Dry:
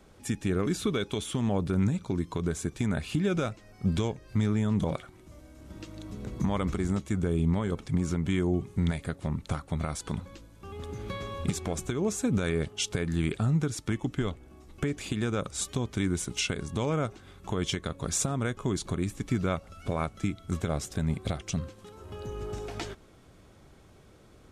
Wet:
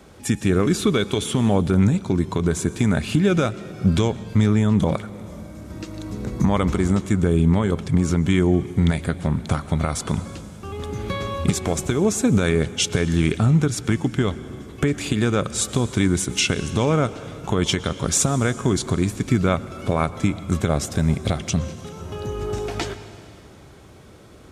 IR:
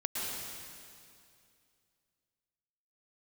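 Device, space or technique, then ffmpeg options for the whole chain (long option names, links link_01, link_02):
compressed reverb return: -filter_complex "[0:a]highpass=49,asettb=1/sr,asplit=3[link_01][link_02][link_03];[link_01]atrim=end=4.944[link_04];[link_02]atrim=start=4.94:end=6.54,asetpts=PTS-STARTPTS,afade=type=in:duration=0.004:curve=qsin,afade=type=out:start_time=1.596:duration=0.004:curve=qsin,equalizer=frequency=3100:width_type=o:width=0.4:gain=-5[link_05];[link_03]atrim=start=6.536[link_06];[link_04][link_05]acrossfade=duration=0.004:curve1=hsin:curve2=qsin[link_07];[link_07][link_06]acrossfade=duration=0.004:curve1=qsin:curve2=hsin,asplit=2[link_08][link_09];[1:a]atrim=start_sample=2205[link_10];[link_09][link_10]afir=irnorm=-1:irlink=0,acompressor=threshold=-24dB:ratio=6,volume=-15.5dB[link_11];[link_08][link_11]amix=inputs=2:normalize=0,volume=8.5dB"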